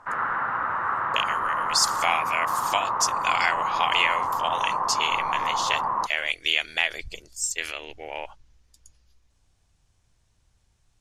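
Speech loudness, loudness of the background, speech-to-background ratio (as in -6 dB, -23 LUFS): -26.5 LUFS, -26.5 LUFS, 0.0 dB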